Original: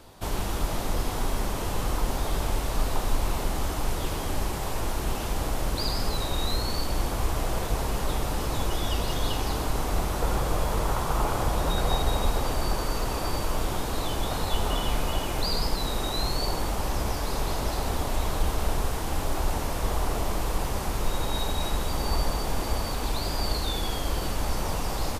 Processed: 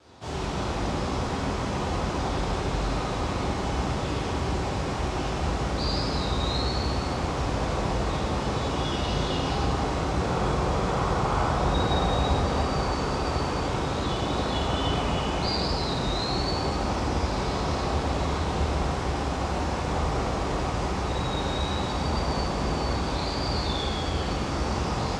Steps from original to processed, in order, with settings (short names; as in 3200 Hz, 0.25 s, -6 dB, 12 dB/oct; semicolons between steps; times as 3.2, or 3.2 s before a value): HPF 62 Hz 24 dB/oct; wow and flutter 28 cents; LPF 7200 Hz 24 dB/oct; reverb RT60 2.4 s, pre-delay 5 ms, DRR -10 dB; gain -7.5 dB